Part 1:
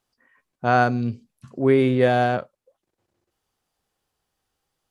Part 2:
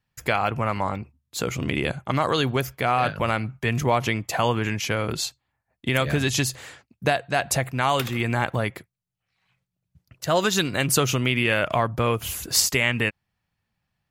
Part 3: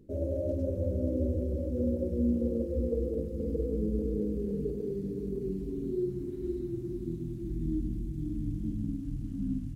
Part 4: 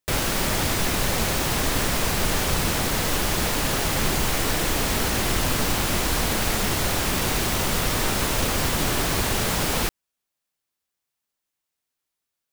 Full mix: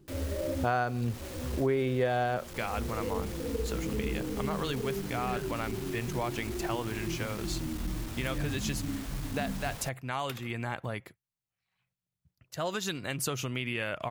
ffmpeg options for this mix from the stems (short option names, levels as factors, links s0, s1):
-filter_complex "[0:a]equalizer=f=240:t=o:w=0.77:g=-5.5,volume=1.33,asplit=2[s0][s1];[1:a]adelay=2300,volume=0.282[s2];[2:a]asplit=2[s3][s4];[s4]adelay=3,afreqshift=-2.4[s5];[s3][s5]amix=inputs=2:normalize=1,volume=1.19[s6];[3:a]asoftclip=type=tanh:threshold=0.0447,volume=0.188[s7];[s1]apad=whole_len=430310[s8];[s6][s8]sidechaincompress=threshold=0.0251:ratio=8:attack=16:release=530[s9];[s0][s2][s9][s7]amix=inputs=4:normalize=0,acompressor=threshold=0.0447:ratio=4"